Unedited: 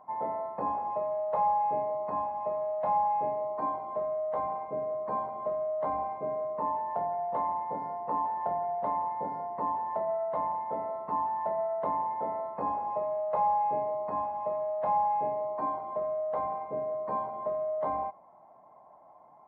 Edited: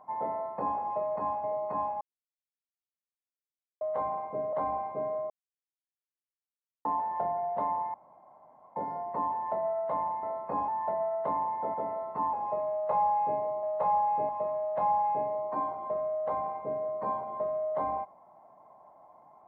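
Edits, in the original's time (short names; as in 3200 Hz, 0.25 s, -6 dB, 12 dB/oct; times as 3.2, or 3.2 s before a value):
1.16–1.82 swap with 14.07–14.35
2.39–4.19 mute
4.91–5.79 cut
6.56–8.11 mute
9.2 insert room tone 0.82 s
10.67–11.26 swap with 12.32–12.77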